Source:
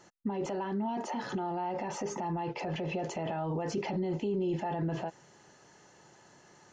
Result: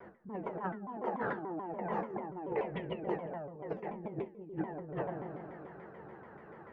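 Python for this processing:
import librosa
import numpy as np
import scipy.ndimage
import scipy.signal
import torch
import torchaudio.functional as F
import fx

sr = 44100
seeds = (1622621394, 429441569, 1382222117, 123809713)

y = scipy.signal.sosfilt(scipy.signal.butter(4, 1800.0, 'lowpass', fs=sr, output='sos'), x)
y = fx.peak_eq(y, sr, hz=430.0, db=10.5, octaves=0.33)
y = fx.notch(y, sr, hz=380.0, q=12.0)
y = fx.rev_spring(y, sr, rt60_s=2.7, pass_ms=(44,), chirp_ms=50, drr_db=14.0)
y = fx.over_compress(y, sr, threshold_db=-38.0, ratio=-0.5)
y = fx.comb_fb(y, sr, f0_hz=70.0, decay_s=0.39, harmonics='odd', damping=0.0, mix_pct=80)
y = fx.room_early_taps(y, sr, ms=(50, 67), db=(-12.5, -14.5))
y = fx.vibrato_shape(y, sr, shape='saw_down', rate_hz=6.9, depth_cents=250.0)
y = y * 10.0 ** (9.5 / 20.0)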